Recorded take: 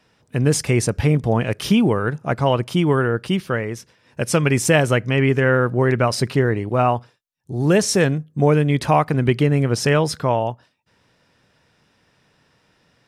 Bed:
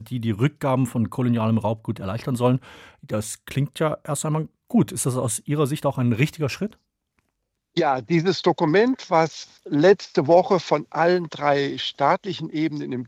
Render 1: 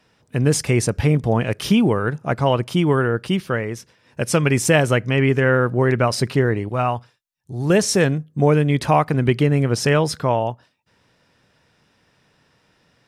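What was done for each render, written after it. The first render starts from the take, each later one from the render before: 6.68–7.70 s: peaking EQ 360 Hz -6 dB 2.5 oct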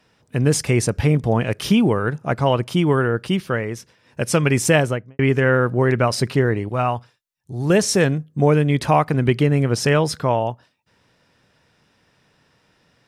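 4.73–5.19 s: studio fade out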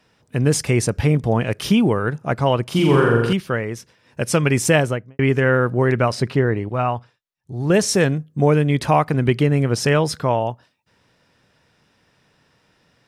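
2.64–3.33 s: flutter echo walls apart 7.4 m, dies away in 1 s; 6.12–7.74 s: low-pass 3.5 kHz 6 dB/octave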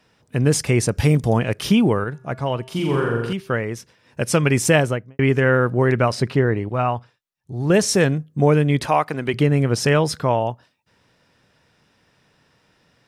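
0.97–1.39 s: tone controls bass +1 dB, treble +10 dB; 2.04–3.50 s: feedback comb 130 Hz, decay 0.96 s, harmonics odd, mix 50%; 8.86–9.34 s: high-pass 470 Hz 6 dB/octave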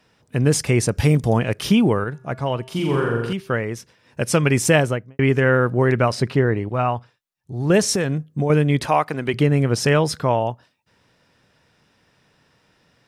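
7.95–8.50 s: compression, threshold -16 dBFS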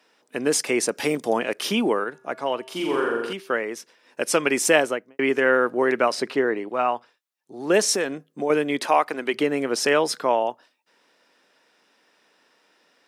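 high-pass 260 Hz 24 dB/octave; bass shelf 360 Hz -3.5 dB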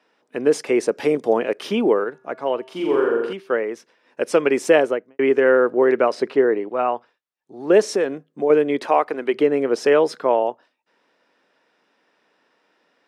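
dynamic bell 440 Hz, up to +7 dB, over -33 dBFS, Q 1.5; low-pass 2.2 kHz 6 dB/octave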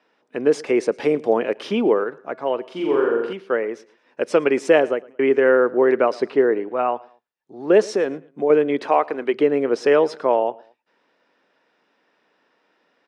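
distance through air 63 m; feedback delay 111 ms, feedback 33%, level -23 dB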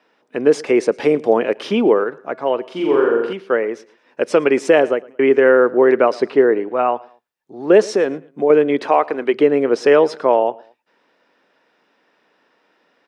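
trim +4 dB; peak limiter -2 dBFS, peak gain reduction 3 dB

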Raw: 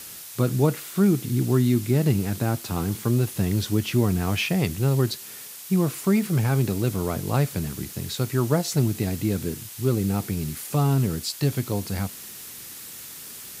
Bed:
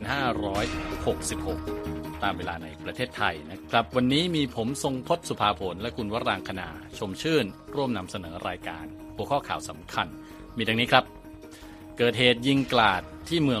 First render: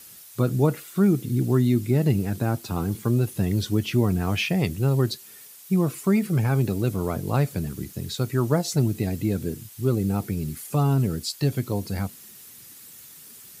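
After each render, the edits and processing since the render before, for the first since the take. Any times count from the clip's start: noise reduction 9 dB, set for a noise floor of -40 dBFS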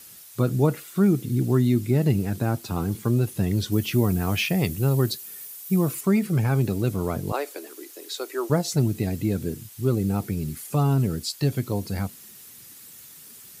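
3.72–6.01 s: treble shelf 11 kHz +12 dB; 7.32–8.50 s: steep high-pass 320 Hz 48 dB/octave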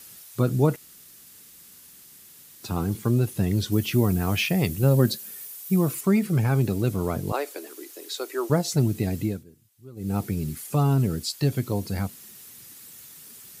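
0.76–2.63 s: room tone; 4.83–5.31 s: small resonant body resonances 210/540/1600 Hz, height 10 dB; 9.22–10.17 s: dip -22 dB, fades 0.22 s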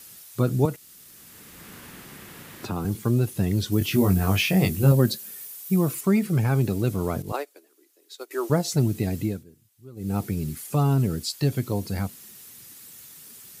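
0.65–2.85 s: three bands compressed up and down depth 70%; 3.79–4.92 s: doubling 21 ms -3 dB; 7.22–8.31 s: upward expansion 2.5:1, over -38 dBFS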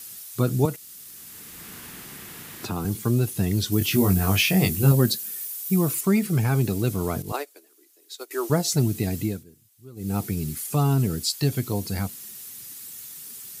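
treble shelf 3.4 kHz +6.5 dB; band-stop 550 Hz, Q 12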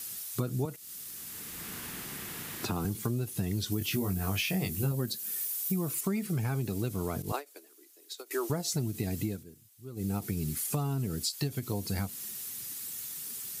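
compression 5:1, threshold -29 dBFS, peak gain reduction 15 dB; endings held to a fixed fall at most 290 dB/s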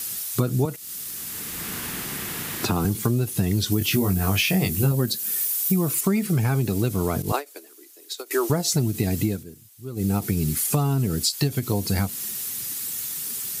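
trim +9.5 dB

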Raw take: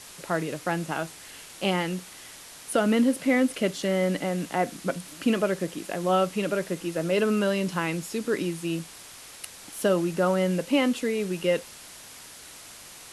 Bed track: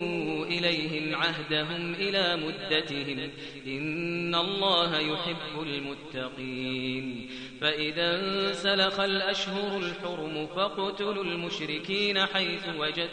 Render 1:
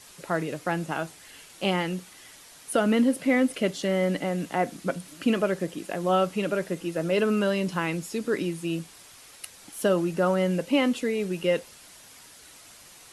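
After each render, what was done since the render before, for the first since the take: noise reduction 6 dB, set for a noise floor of -46 dBFS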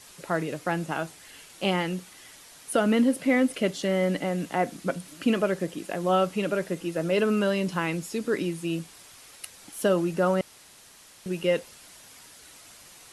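10.41–11.26 s: room tone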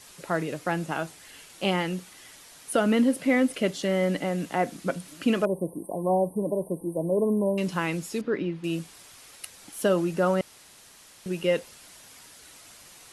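5.45–7.58 s: brick-wall FIR band-stop 1.1–8.4 kHz; 8.21–8.64 s: distance through air 310 m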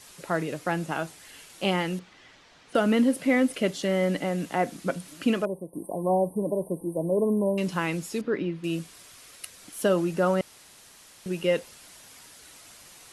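1.99–2.75 s: distance through air 170 m; 5.27–5.73 s: fade out, to -13.5 dB; 8.52–9.79 s: band-stop 840 Hz, Q 7.7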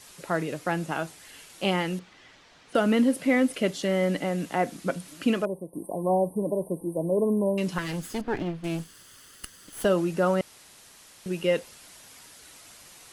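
7.78–9.85 s: comb filter that takes the minimum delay 0.64 ms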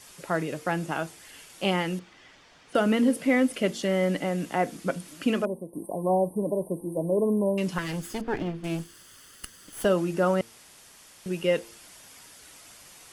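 band-stop 4 kHz, Q 17; de-hum 114.2 Hz, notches 4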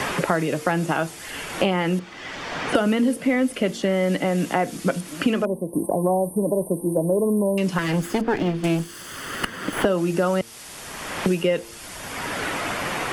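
in parallel at -1.5 dB: peak limiter -18.5 dBFS, peak gain reduction 7.5 dB; on the sum: three bands compressed up and down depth 100%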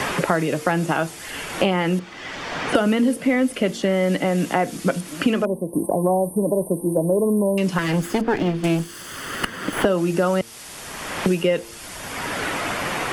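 trim +1.5 dB

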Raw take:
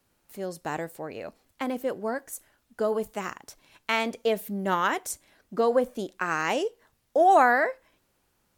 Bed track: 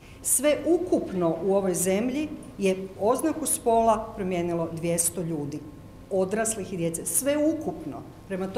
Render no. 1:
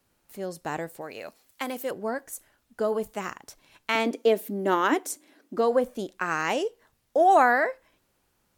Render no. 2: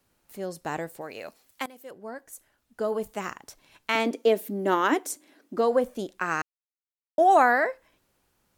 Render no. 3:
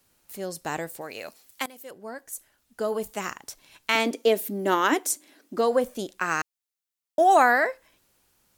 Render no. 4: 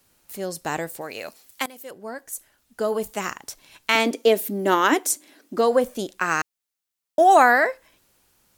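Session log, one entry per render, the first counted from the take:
1.01–1.91 s: tilt EQ +2.5 dB/octave; 3.95–5.57 s: resonant high-pass 290 Hz
1.66–3.19 s: fade in, from -18 dB; 6.42–7.18 s: mute
treble shelf 2.7 kHz +8 dB
trim +3.5 dB

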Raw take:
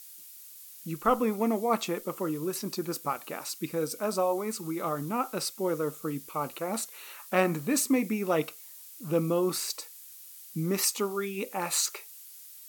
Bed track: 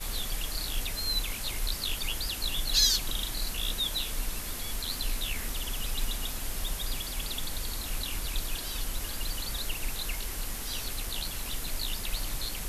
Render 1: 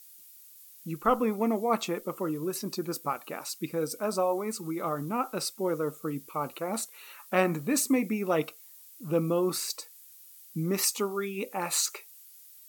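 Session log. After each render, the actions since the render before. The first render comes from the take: noise reduction 6 dB, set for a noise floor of -49 dBFS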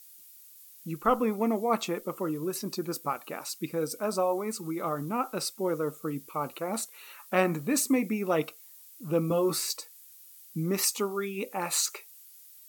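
9.29–9.77 s: doubling 13 ms -3 dB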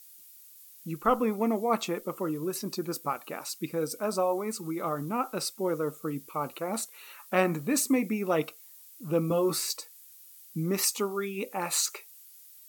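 no audible change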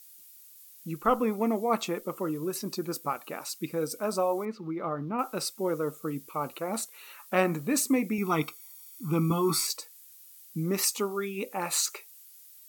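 4.45–5.19 s: distance through air 290 m; 8.18–9.67 s: comb 0.9 ms, depth 96%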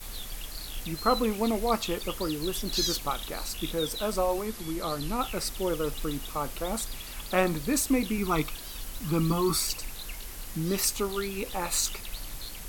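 add bed track -5.5 dB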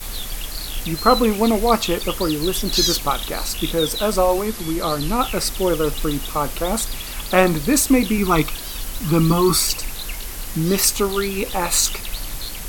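trim +10 dB

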